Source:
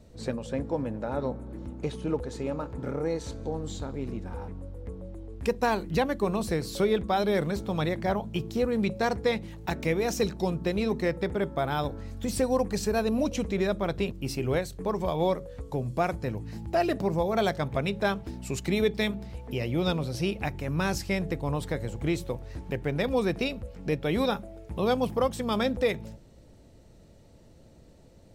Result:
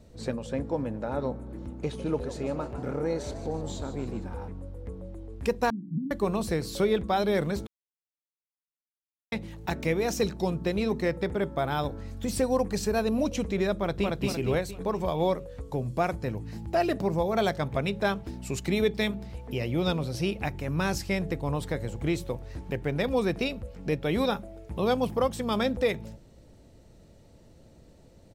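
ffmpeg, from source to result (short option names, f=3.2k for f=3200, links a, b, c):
-filter_complex "[0:a]asettb=1/sr,asplit=3[a][b][c];[a]atrim=end=1.814[d];[b]atrim=start=1.81:end=4.27,asetpts=PTS-STARTPTS,afade=t=in:d=0.004:c=qsin,afade=t=out:st=2.456:d=0.004:c=qsin,asplit=7[e][f][g][h][i][j][k];[f]adelay=151,afreqshift=87,volume=-12dB[l];[g]adelay=302,afreqshift=174,volume=-16.9dB[m];[h]adelay=453,afreqshift=261,volume=-21.8dB[n];[i]adelay=604,afreqshift=348,volume=-26.6dB[o];[j]adelay=755,afreqshift=435,volume=-31.5dB[p];[k]adelay=906,afreqshift=522,volume=-36.4dB[q];[e][l][m][n][o][p][q]amix=inputs=7:normalize=0,atrim=end_sample=108486[r];[c]atrim=start=4.266[s];[d][r]acrossfade=d=0.004:c1=hsin:c2=qsin[t];[t][s]acrossfade=d=0.004:c1=qsin:c2=hsin,asettb=1/sr,asplit=3[u][v][w];[u]atrim=end=5.704[x];[v]atrim=start=5.7:end=6.11,asetpts=PTS-STARTPTS,afade=t=in:d=0.004:c=qsin,afade=t=out:st=0.406:d=0.004:c=qsin,asuperpass=centerf=190:order=12:qfactor=1.1[y];[w]atrim=start=6.106[z];[x][y]acrossfade=d=0.004:c1=hsin:c2=qsin[aa];[aa][z]acrossfade=d=0.004:c1=qsin:c2=hsin,asplit=2[ab][ac];[ac]afade=t=in:st=13.75:d=0.01,afade=t=out:st=14.15:d=0.01,aecho=0:1:230|460|690|920|1150|1380:0.841395|0.378628|0.170383|0.0766721|0.0345025|0.0155261[ad];[ab][ad]amix=inputs=2:normalize=0,asplit=3[ae][af][ag];[ae]atrim=end=7.67,asetpts=PTS-STARTPTS,afade=t=out:st=7.666:d=0.004:c=hsin[ah];[af]atrim=start=7.67:end=9.32,asetpts=PTS-STARTPTS,volume=0[ai];[ag]atrim=start=9.32,asetpts=PTS-STARTPTS,afade=t=in:d=0.004:c=hsin[aj];[ah][ai][aj]concat=n=3:v=0:a=1"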